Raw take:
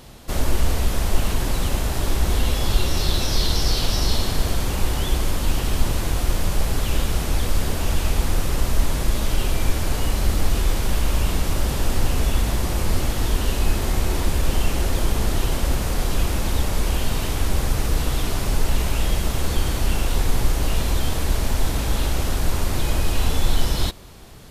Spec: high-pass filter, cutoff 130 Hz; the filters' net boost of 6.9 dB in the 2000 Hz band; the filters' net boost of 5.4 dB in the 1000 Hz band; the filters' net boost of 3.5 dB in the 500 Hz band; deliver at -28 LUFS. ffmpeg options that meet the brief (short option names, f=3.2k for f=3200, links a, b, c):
-af "highpass=130,equalizer=f=500:t=o:g=3,equalizer=f=1k:t=o:g=4,equalizer=f=2k:t=o:g=7.5,volume=-3.5dB"